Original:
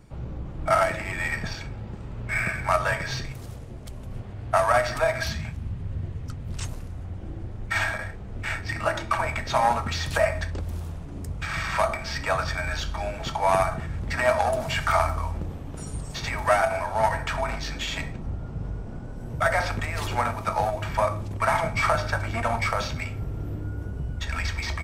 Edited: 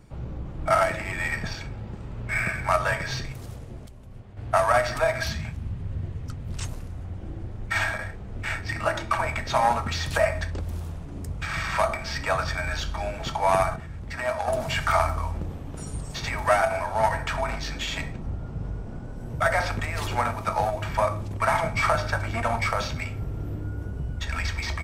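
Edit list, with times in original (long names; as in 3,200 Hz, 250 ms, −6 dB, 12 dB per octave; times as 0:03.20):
0:03.86–0:04.37: clip gain −8 dB
0:13.76–0:14.48: clip gain −6 dB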